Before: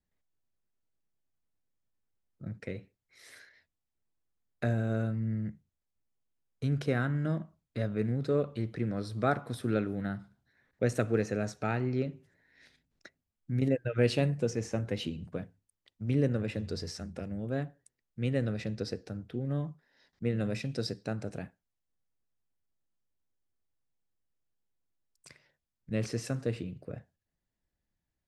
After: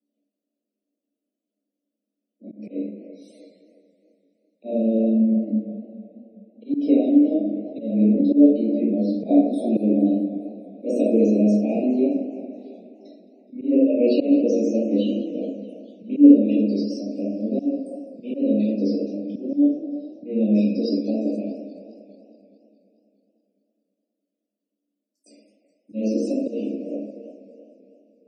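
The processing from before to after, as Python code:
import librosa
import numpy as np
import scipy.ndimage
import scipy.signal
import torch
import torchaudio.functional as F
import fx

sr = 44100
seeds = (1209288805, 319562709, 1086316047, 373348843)

y = scipy.signal.sosfilt(scipy.signal.cheby1(6, 9, 200.0, 'highpass', fs=sr, output='sos'), x)
y = fx.echo_wet_bandpass(y, sr, ms=337, feedback_pct=46, hz=970.0, wet_db=-9.5)
y = fx.room_shoebox(y, sr, seeds[0], volume_m3=190.0, walls='mixed', distance_m=2.3)
y = fx.auto_swell(y, sr, attack_ms=147.0)
y = scipy.signal.sosfilt(scipy.signal.ellip(3, 1.0, 40, [630.0, 2500.0], 'bandstop', fs=sr, output='sos'), y)
y = fx.peak_eq(y, sr, hz=280.0, db=12.5, octaves=2.9)
y = fx.spec_topn(y, sr, count=64)
y = fx.high_shelf(y, sr, hz=4400.0, db=9.5)
y = fx.echo_warbled(y, sr, ms=210, feedback_pct=67, rate_hz=2.8, cents=180, wet_db=-19)
y = y * librosa.db_to_amplitude(-1.0)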